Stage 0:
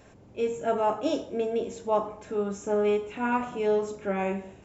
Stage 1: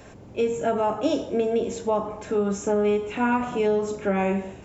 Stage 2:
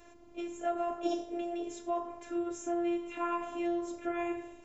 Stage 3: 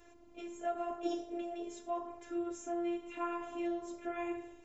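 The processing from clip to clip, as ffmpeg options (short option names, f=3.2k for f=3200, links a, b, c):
-filter_complex "[0:a]acrossover=split=220[a][b];[b]acompressor=threshold=-29dB:ratio=5[c];[a][c]amix=inputs=2:normalize=0,volume=8dB"
-af "afftfilt=real='hypot(re,im)*cos(PI*b)':imag='0':win_size=512:overlap=0.75,volume=-6.5dB"
-af "flanger=delay=2.3:depth=2.6:regen=-53:speed=0.88:shape=sinusoidal"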